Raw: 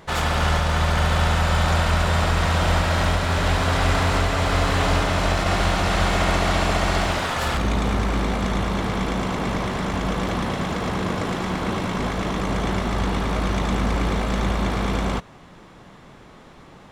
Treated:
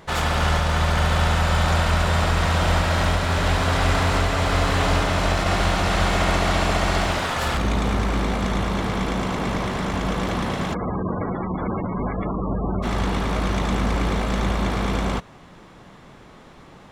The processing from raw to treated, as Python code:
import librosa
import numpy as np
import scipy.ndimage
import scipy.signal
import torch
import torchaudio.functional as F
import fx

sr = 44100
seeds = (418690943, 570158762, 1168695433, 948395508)

y = fx.spec_gate(x, sr, threshold_db=-15, keep='strong', at=(10.73, 12.82), fade=0.02)